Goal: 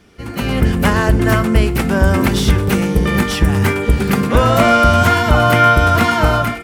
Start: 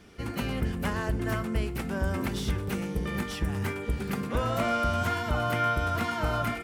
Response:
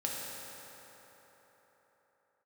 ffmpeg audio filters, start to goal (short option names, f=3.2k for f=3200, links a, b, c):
-af "dynaudnorm=f=130:g=7:m=12.5dB,volume=4dB"